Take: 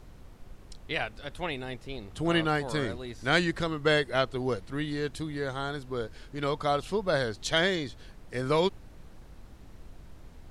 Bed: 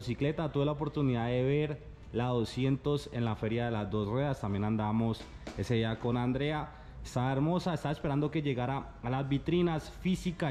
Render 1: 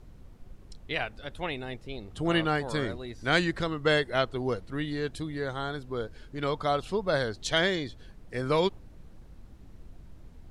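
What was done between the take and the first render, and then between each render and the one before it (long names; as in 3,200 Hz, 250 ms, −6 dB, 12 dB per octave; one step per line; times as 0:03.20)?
broadband denoise 6 dB, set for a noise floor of −51 dBFS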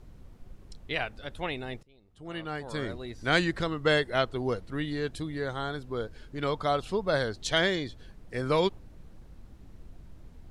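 0:01.83–0:03.03: fade in quadratic, from −23 dB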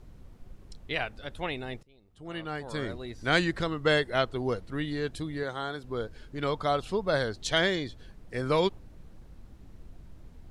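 0:05.43–0:05.84: high-pass filter 220 Hz 6 dB per octave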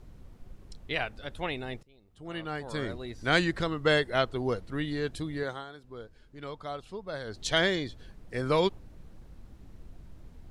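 0:05.50–0:07.39: duck −10.5 dB, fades 0.15 s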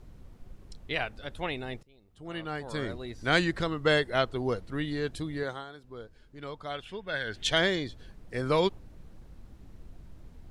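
0:06.70–0:07.49: gain on a spectral selection 1,400–3,700 Hz +11 dB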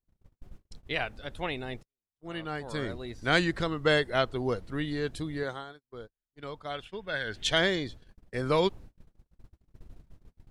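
noise gate −44 dBFS, range −40 dB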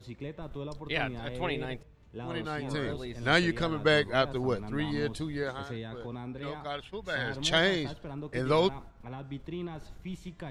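mix in bed −9 dB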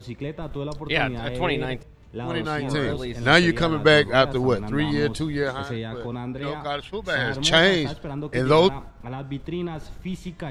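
level +8.5 dB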